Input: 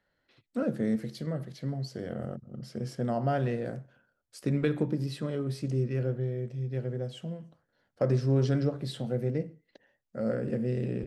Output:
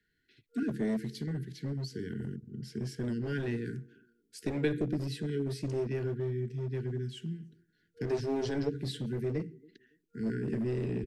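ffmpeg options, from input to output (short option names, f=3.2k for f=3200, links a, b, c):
-filter_complex "[0:a]afftfilt=real='re*(1-between(b*sr/4096,470,1400))':imag='im*(1-between(b*sr/4096,470,1400))':win_size=4096:overlap=0.75,acrossover=split=240|430|2700[a][b][c][d];[a]aeval=exprs='0.0237*(abs(mod(val(0)/0.0237+3,4)-2)-1)':c=same[e];[b]aecho=1:1:280|560:0.133|0.032[f];[e][f][c][d]amix=inputs=4:normalize=0"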